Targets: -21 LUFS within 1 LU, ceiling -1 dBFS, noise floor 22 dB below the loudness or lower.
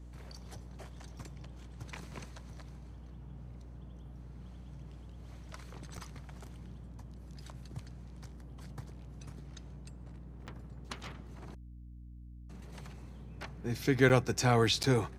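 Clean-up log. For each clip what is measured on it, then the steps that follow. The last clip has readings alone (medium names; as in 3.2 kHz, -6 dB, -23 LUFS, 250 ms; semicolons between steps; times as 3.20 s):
dropouts 4; longest dropout 8.1 ms; hum 60 Hz; highest harmonic 300 Hz; hum level -47 dBFS; loudness -32.5 LUFS; peak level -11.0 dBFS; loudness target -21.0 LUFS
-> interpolate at 5.97/10.47/14.09/14.83 s, 8.1 ms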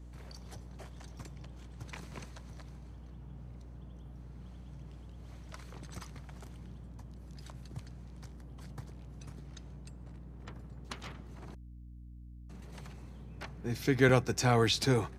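dropouts 0; hum 60 Hz; highest harmonic 300 Hz; hum level -47 dBFS
-> de-hum 60 Hz, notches 5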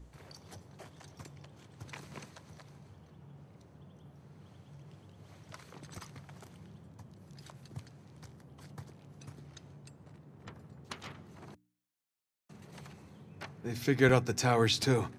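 hum not found; loudness -30.0 LUFS; peak level -12.0 dBFS; loudness target -21.0 LUFS
-> trim +9 dB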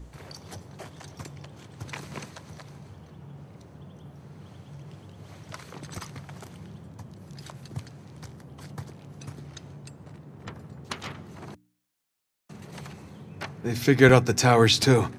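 loudness -21.0 LUFS; peak level -3.0 dBFS; noise floor -72 dBFS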